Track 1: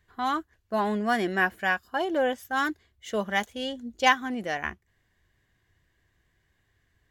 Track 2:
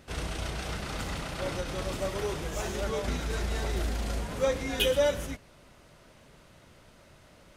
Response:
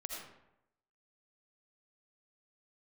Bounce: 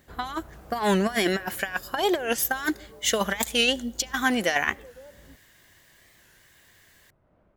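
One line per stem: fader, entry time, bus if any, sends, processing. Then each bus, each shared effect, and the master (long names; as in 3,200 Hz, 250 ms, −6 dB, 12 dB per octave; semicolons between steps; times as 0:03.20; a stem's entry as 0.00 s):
−0.5 dB, 0.00 s, send −23 dB, spectral tilt +3 dB per octave; compressor whose output falls as the input rises −31 dBFS, ratio −0.5; bit-depth reduction 12 bits, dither triangular
−5.0 dB, 0.00 s, no send, low-pass filter 1,100 Hz 12 dB per octave; downward compressor, threshold −34 dBFS, peak gain reduction 12.5 dB; automatic ducking −13 dB, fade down 0.85 s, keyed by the first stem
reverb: on, RT60 0.85 s, pre-delay 40 ms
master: automatic gain control gain up to 7 dB; wow of a warped record 45 rpm, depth 160 cents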